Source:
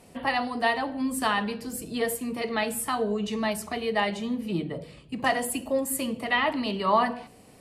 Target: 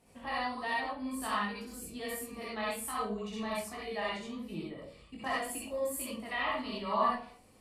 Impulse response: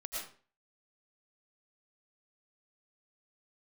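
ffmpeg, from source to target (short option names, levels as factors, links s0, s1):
-filter_complex "[0:a]flanger=delay=19:depth=5.1:speed=1.3[s0];[1:a]atrim=start_sample=2205,asetrate=79380,aresample=44100[s1];[s0][s1]afir=irnorm=-1:irlink=0"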